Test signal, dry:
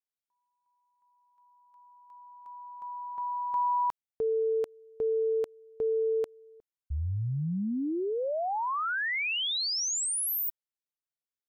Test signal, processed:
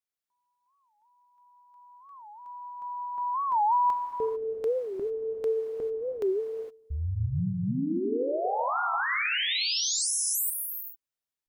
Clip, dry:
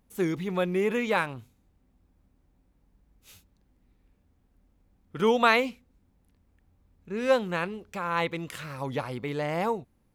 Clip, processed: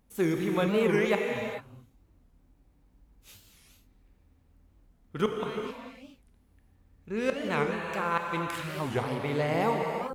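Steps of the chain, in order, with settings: inverted gate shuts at -13 dBFS, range -25 dB; gated-style reverb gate 470 ms flat, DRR 1.5 dB; warped record 45 rpm, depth 250 cents

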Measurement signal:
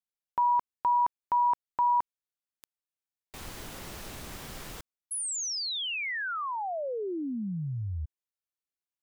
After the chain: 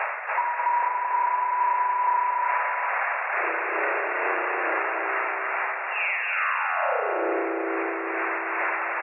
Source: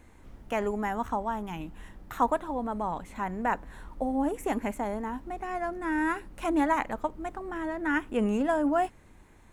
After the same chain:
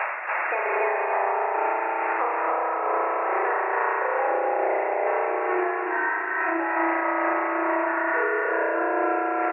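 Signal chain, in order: coarse spectral quantiser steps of 30 dB; spring tank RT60 3.1 s, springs 33 ms, chirp 40 ms, DRR -10 dB; spectral noise reduction 8 dB; band noise 580–2200 Hz -35 dBFS; hum notches 50/100/150/200/250/300/350/400/450 Hz; tremolo 2.3 Hz, depth 68%; gain riding within 4 dB 0.5 s; brick-wall FIR band-pass 320–2800 Hz; compression 6:1, threshold -30 dBFS; feedback delay 282 ms, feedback 41%, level -3 dB; trim +7 dB

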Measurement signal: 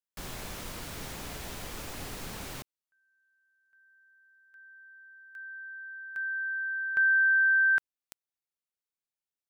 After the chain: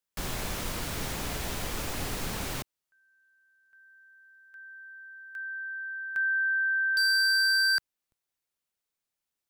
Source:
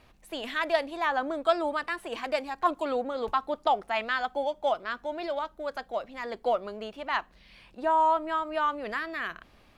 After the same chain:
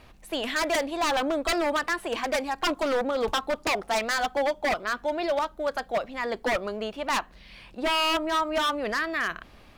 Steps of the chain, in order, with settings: bass shelf 100 Hz +2 dB; wavefolder -25 dBFS; trim +6 dB

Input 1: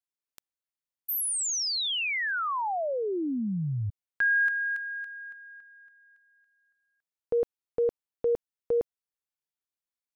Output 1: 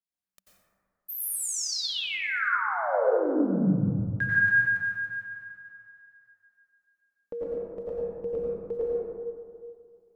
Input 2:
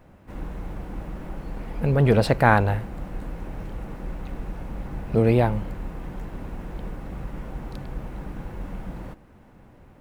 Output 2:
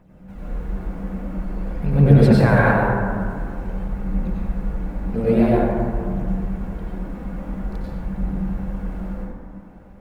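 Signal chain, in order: peaking EQ 190 Hz +13 dB 0.21 oct; phaser 0.49 Hz, delay 4.3 ms, feedback 49%; plate-style reverb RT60 2.1 s, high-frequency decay 0.3×, pre-delay 80 ms, DRR -7.5 dB; trim -7.5 dB

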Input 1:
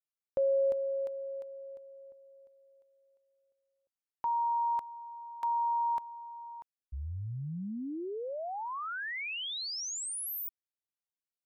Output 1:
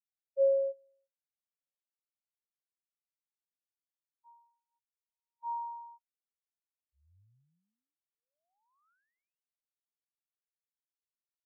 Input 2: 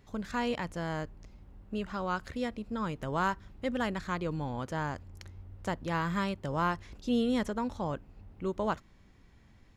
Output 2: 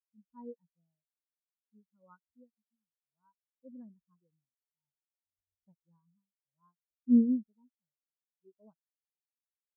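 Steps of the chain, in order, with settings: tremolo triangle 0.59 Hz, depth 85%; spectral contrast expander 4:1; trim +4 dB

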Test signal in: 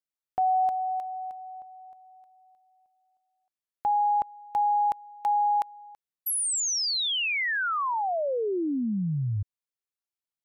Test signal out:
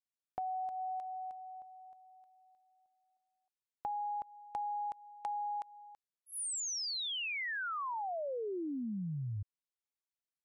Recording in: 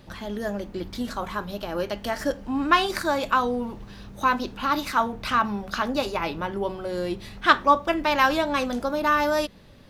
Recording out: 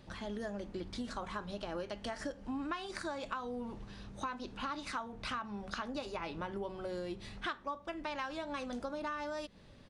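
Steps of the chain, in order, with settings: compression 10:1, threshold -29 dBFS; resampled via 22.05 kHz; trim -7 dB

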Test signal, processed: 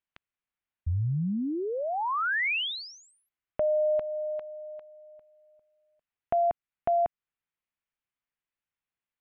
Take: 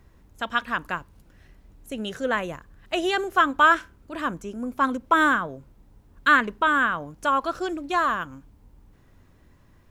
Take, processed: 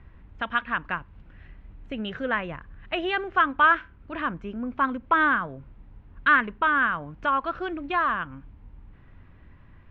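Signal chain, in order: low-pass 2.8 kHz 24 dB/octave; peaking EQ 460 Hz -7 dB 2.3 oct; in parallel at +1 dB: compression, threshold -38 dBFS

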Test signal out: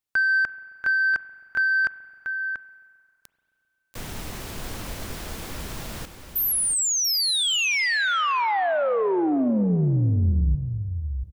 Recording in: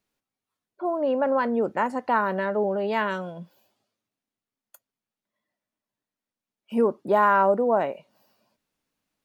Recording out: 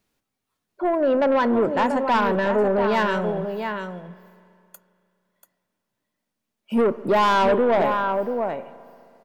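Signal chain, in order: bass shelf 220 Hz +4.5 dB; on a send: delay 687 ms -9 dB; on the sum: saturation -20 dBFS; spring tank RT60 2.5 s, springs 33/44 ms, chirp 75 ms, DRR 15 dB; trim +6 dB

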